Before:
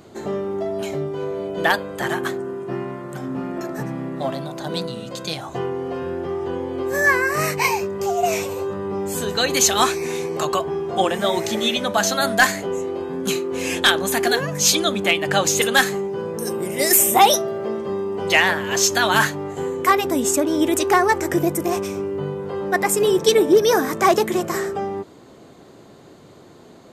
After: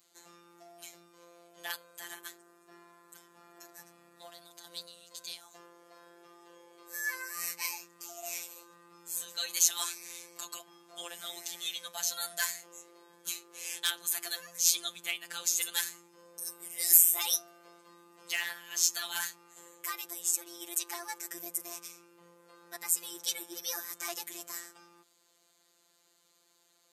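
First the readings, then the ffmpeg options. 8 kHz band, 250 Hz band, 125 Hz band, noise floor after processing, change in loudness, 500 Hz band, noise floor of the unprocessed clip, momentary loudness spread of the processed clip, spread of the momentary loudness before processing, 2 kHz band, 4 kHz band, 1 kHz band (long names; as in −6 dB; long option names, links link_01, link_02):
−7.5 dB, −32.0 dB, below −35 dB, −69 dBFS, −11.5 dB, −33.0 dB, −46 dBFS, 19 LU, 12 LU, −19.0 dB, −13.0 dB, −26.0 dB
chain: -af "afftfilt=real='hypot(re,im)*cos(PI*b)':imag='0':win_size=1024:overlap=0.75,aderivative,volume=-4dB"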